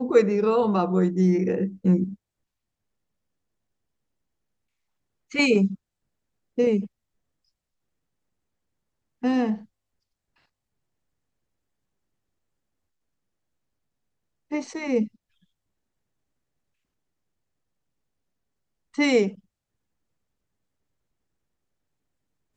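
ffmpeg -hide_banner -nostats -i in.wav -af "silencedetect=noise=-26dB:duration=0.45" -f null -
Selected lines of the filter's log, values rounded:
silence_start: 2.05
silence_end: 5.35 | silence_duration: 3.30
silence_start: 5.71
silence_end: 6.58 | silence_duration: 0.87
silence_start: 6.84
silence_end: 9.24 | silence_duration: 2.40
silence_start: 9.54
silence_end: 14.52 | silence_duration: 4.98
silence_start: 15.04
silence_end: 18.98 | silence_duration: 3.94
silence_start: 19.29
silence_end: 22.56 | silence_duration: 3.28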